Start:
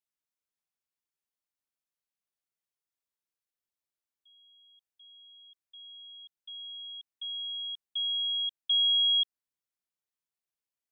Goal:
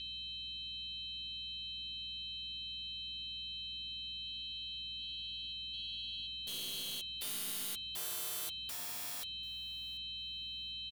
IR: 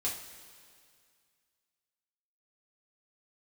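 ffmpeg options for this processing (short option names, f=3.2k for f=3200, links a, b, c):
-filter_complex "[0:a]adynamicequalizer=threshold=0.01:dfrequency=3100:dqfactor=2.2:tfrequency=3100:tqfactor=2.2:attack=5:release=100:ratio=0.375:range=1.5:mode=boostabove:tftype=bell,aeval=exprs='val(0)+0.01*sin(2*PI*3100*n/s)':c=same,asuperpass=centerf=3200:order=8:qfactor=0.82,aeval=exprs='0.126*(cos(1*acos(clip(val(0)/0.126,-1,1)))-cos(1*PI/2))+0.0112*(cos(5*acos(clip(val(0)/0.126,-1,1)))-cos(5*PI/2))+0.00708*(cos(7*acos(clip(val(0)/0.126,-1,1)))-cos(7*PI/2))+0.00126*(cos(8*acos(clip(val(0)/0.126,-1,1)))-cos(8*PI/2))':c=same,aeval=exprs='val(0)+0.00112*(sin(2*PI*60*n/s)+sin(2*PI*2*60*n/s)/2+sin(2*PI*3*60*n/s)/3+sin(2*PI*4*60*n/s)/4+sin(2*PI*5*60*n/s)/5)':c=same,aeval=exprs='(mod(47.3*val(0)+1,2)-1)/47.3':c=same,asplit=2[a][b];[b]aecho=0:1:739|1478:0.0631|0.0126[c];[a][c]amix=inputs=2:normalize=0,asplit=4[d][e][f][g];[e]asetrate=37084,aresample=44100,atempo=1.18921,volume=-13dB[h];[f]asetrate=55563,aresample=44100,atempo=0.793701,volume=-4dB[i];[g]asetrate=58866,aresample=44100,atempo=0.749154,volume=-9dB[j];[d][h][i][j]amix=inputs=4:normalize=0,volume=-3.5dB"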